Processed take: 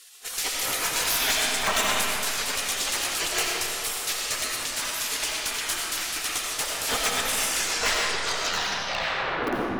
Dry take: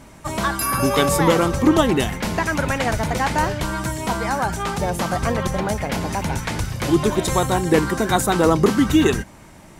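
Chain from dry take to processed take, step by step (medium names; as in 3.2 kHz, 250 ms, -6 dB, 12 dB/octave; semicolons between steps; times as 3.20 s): tape stop on the ending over 2.74 s; spectral gate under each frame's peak -25 dB weak; reverb removal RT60 1.3 s; valve stage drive 28 dB, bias 0.65; in parallel at -7.5 dB: integer overflow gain 27.5 dB; on the sum: pre-echo 31 ms -17 dB; algorithmic reverb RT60 2.8 s, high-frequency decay 0.65×, pre-delay 45 ms, DRR -3 dB; trim +8.5 dB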